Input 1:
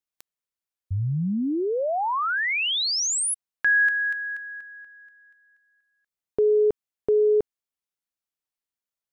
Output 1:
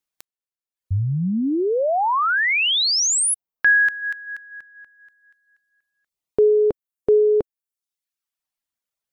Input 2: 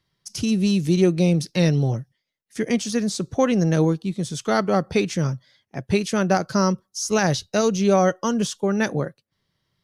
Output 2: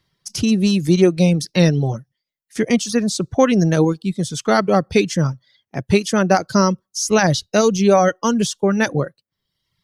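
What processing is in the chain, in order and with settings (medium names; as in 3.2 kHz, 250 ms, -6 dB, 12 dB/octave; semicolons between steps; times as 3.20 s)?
reverb removal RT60 0.85 s; trim +5.5 dB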